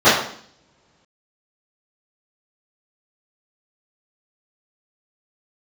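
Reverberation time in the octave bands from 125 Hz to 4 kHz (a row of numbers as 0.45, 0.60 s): 1.9, 0.85, 0.60, 0.55, 0.55, 0.60 s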